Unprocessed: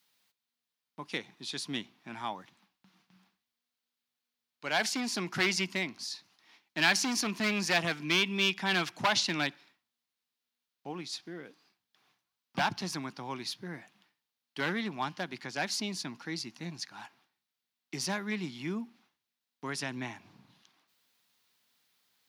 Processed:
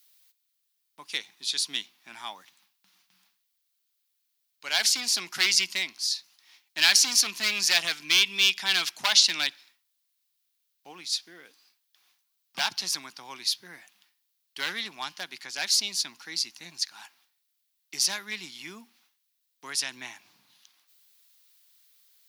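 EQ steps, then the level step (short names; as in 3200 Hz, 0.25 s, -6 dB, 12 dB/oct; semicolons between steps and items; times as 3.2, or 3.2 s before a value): dynamic EQ 4200 Hz, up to +5 dB, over -43 dBFS, Q 1; tilt +4.5 dB/oct; -3.0 dB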